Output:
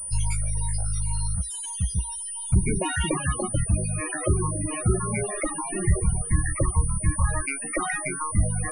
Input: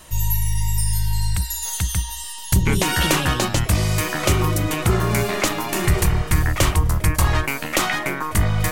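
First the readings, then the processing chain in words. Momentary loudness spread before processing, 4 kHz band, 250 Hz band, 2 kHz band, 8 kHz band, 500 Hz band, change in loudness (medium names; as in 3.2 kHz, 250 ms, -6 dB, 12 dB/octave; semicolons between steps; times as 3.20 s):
5 LU, -15.5 dB, -5.5 dB, -8.5 dB, -2.0 dB, -6.0 dB, -5.5 dB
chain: reverb removal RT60 1.5 s; loudest bins only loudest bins 16; class-D stage that switches slowly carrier 9.4 kHz; trim -2.5 dB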